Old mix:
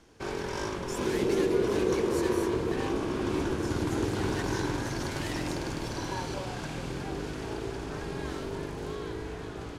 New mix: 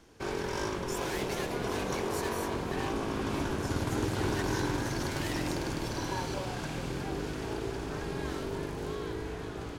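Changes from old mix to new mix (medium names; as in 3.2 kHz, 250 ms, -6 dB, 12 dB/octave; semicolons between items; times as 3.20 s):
second sound: add resonant low shelf 520 Hz -11 dB, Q 3; master: remove low-pass 12 kHz 12 dB/octave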